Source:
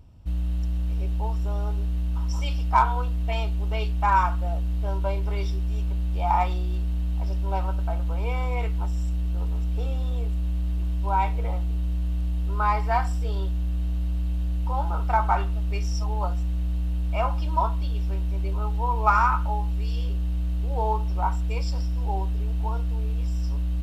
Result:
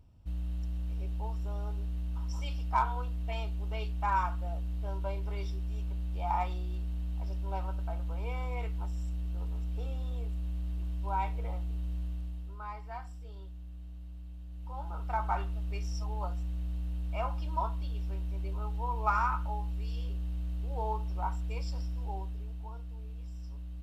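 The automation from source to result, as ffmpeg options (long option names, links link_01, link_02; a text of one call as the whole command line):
ffmpeg -i in.wav -af "volume=1dB,afade=type=out:start_time=12:duration=0.59:silence=0.316228,afade=type=in:start_time=14.48:duration=0.88:silence=0.316228,afade=type=out:start_time=21.86:duration=0.81:silence=0.446684" out.wav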